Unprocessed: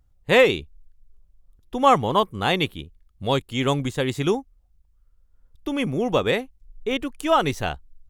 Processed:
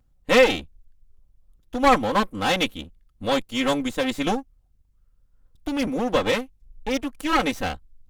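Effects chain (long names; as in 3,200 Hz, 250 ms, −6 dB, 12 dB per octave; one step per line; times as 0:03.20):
lower of the sound and its delayed copy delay 3.8 ms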